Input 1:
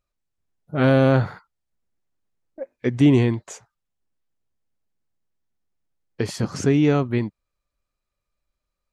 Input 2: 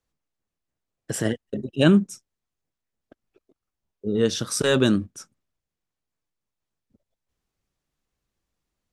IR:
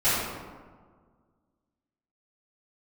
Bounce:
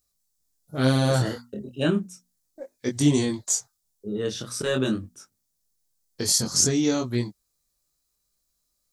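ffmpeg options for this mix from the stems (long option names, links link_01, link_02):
-filter_complex "[0:a]aexciter=amount=13.7:drive=1.3:freq=3900,volume=-2dB[link_01];[1:a]bandreject=frequency=60:width_type=h:width=6,bandreject=frequency=120:width_type=h:width=6,bandreject=frequency=180:width_type=h:width=6,bandreject=frequency=240:width_type=h:width=6,volume=-2.5dB[link_02];[link_01][link_02]amix=inputs=2:normalize=0,flanger=delay=19.5:depth=5.1:speed=0.35"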